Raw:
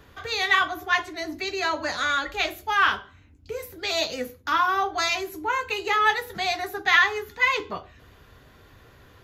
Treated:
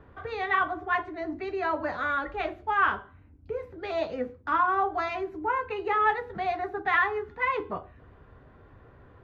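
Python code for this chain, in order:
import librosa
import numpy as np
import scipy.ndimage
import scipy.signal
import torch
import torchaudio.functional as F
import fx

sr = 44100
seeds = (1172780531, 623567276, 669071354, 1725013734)

y = scipy.signal.sosfilt(scipy.signal.butter(2, 1300.0, 'lowpass', fs=sr, output='sos'), x)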